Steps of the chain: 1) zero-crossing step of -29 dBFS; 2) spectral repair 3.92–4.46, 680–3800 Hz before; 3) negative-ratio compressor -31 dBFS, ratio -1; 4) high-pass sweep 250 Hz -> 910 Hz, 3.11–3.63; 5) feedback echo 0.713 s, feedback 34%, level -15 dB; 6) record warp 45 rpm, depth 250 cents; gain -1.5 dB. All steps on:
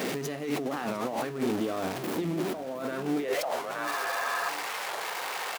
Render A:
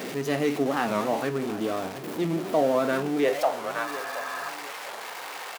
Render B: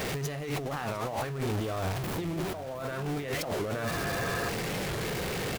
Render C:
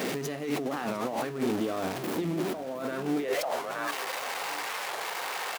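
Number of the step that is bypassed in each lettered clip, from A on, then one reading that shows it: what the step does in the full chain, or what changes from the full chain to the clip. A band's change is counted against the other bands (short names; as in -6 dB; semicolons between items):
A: 3, crest factor change +2.5 dB; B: 4, 125 Hz band +10.0 dB; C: 2, 2 kHz band -1.5 dB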